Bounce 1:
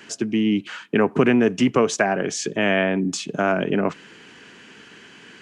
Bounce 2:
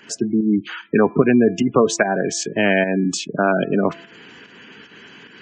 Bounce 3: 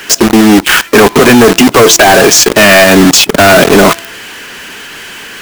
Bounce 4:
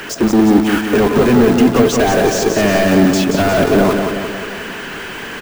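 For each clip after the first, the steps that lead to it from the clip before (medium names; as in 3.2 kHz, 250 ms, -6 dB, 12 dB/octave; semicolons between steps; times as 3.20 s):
spectral gate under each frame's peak -20 dB strong; volume shaper 148 bpm, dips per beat 1, -8 dB, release 168 ms; de-hum 337.3 Hz, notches 7; trim +3.5 dB
overdrive pedal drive 27 dB, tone 6.7 kHz, clips at -1.5 dBFS; companded quantiser 2-bit; trim -1 dB
de-esser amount 75%; hard clipper -11 dBFS, distortion -12 dB; feedback delay 178 ms, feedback 56%, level -5.5 dB; trim +3.5 dB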